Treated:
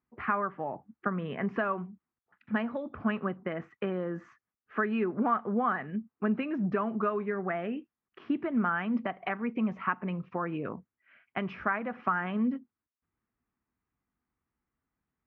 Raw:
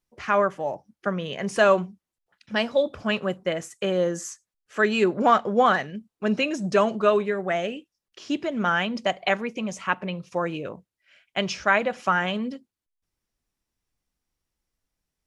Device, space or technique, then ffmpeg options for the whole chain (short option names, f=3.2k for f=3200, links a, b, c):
bass amplifier: -af "acompressor=threshold=-28dB:ratio=4,highpass=65,equalizer=f=240:t=q:w=4:g=6,equalizer=f=560:t=q:w=4:g=-8,equalizer=f=1.2k:t=q:w=4:g=5,lowpass=f=2.1k:w=0.5412,lowpass=f=2.1k:w=1.3066"